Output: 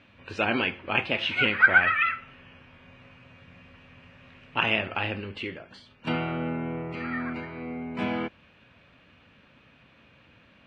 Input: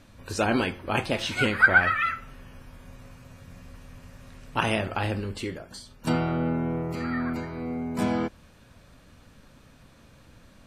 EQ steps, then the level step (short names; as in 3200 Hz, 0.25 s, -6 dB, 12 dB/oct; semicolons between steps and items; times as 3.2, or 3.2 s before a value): HPF 63 Hz; synth low-pass 2700 Hz, resonance Q 3; low shelf 110 Hz -6 dB; -3.0 dB